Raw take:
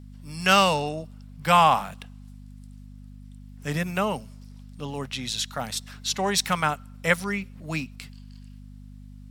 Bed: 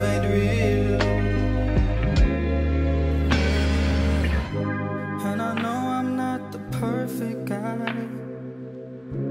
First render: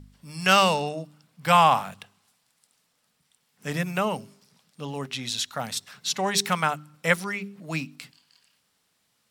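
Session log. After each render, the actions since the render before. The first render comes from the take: de-hum 50 Hz, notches 8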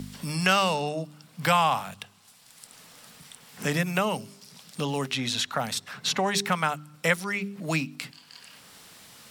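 three-band squash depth 70%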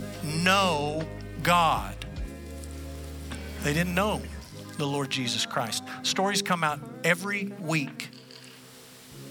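add bed -17 dB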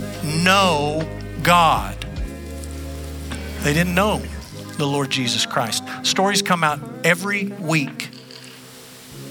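gain +8 dB; limiter -2 dBFS, peak gain reduction 2 dB

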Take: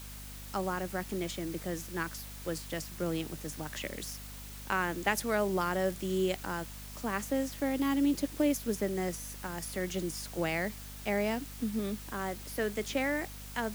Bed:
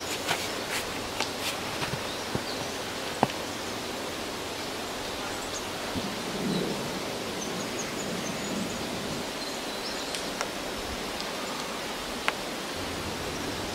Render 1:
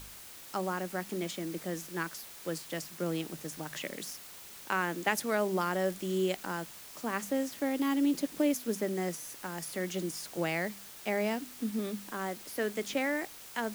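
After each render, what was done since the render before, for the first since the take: de-hum 50 Hz, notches 5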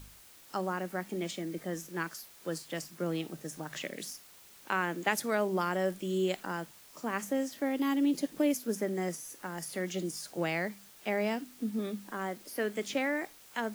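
noise print and reduce 7 dB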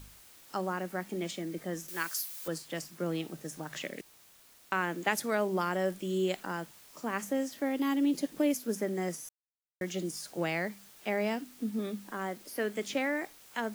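1.88–2.48 tilt +3.5 dB/oct; 4.01–4.72 room tone; 9.29–9.81 mute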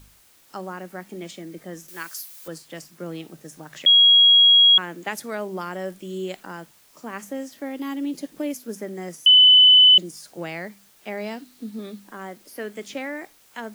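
3.86–4.78 bleep 3300 Hz -10 dBFS; 9.26–9.98 bleep 3010 Hz -8.5 dBFS; 11.17–12 bell 4100 Hz +7.5 dB 0.29 oct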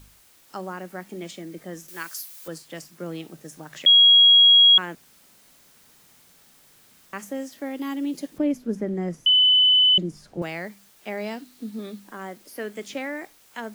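4.95–7.13 room tone; 8.38–10.42 RIAA curve playback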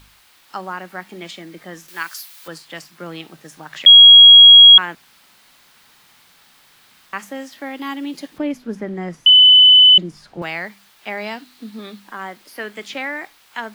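band shelf 1900 Hz +8.5 dB 2.9 oct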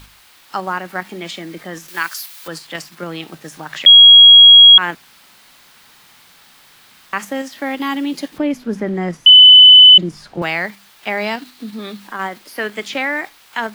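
in parallel at +2 dB: level quantiser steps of 10 dB; on the sum: maximiser +1 dB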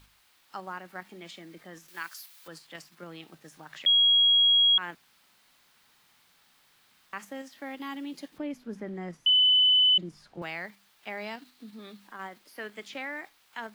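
gain -16.5 dB

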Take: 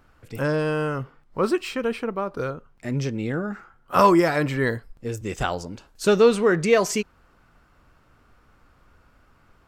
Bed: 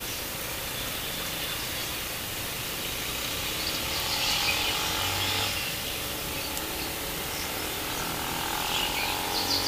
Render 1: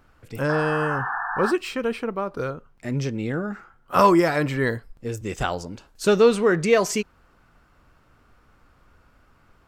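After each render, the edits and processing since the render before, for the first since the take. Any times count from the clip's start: 0.49–1.52 painted sound noise 700–1800 Hz -28 dBFS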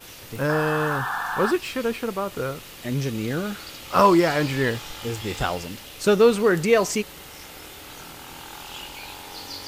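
add bed -9.5 dB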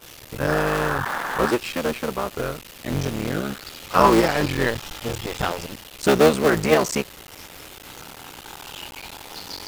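cycle switcher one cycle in 3, muted; in parallel at -10 dB: bit-crush 6-bit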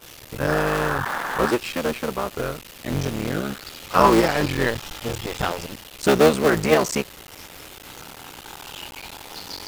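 nothing audible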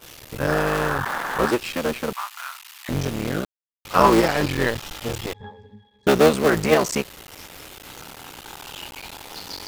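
2.13–2.89 steep high-pass 880 Hz 48 dB/oct; 3.45–3.85 mute; 5.33–6.07 octave resonator G#, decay 0.21 s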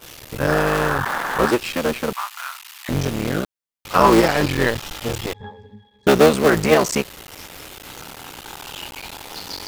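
gain +3 dB; limiter -2 dBFS, peak gain reduction 2 dB

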